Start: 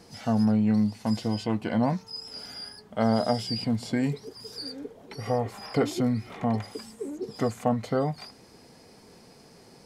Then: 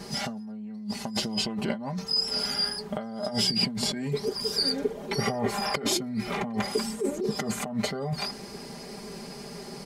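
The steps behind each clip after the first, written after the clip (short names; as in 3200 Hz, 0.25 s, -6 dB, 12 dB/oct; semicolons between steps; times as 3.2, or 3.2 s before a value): comb 5 ms, depth 91%; negative-ratio compressor -32 dBFS, ratio -1; gain +2 dB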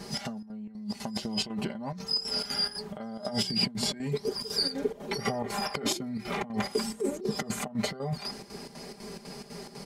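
chopper 4 Hz, depth 65%, duty 70%; gain -1.5 dB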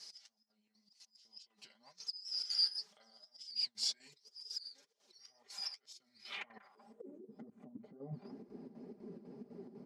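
auto swell 0.479 s; flange 2 Hz, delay 1.3 ms, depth 9.4 ms, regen +41%; band-pass sweep 5300 Hz -> 280 Hz, 6.18–7.15; gain +2.5 dB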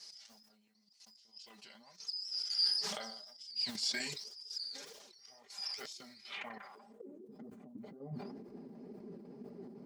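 sustainer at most 39 dB/s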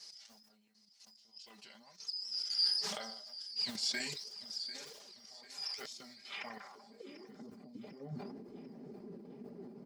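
feedback echo 0.745 s, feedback 49%, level -17 dB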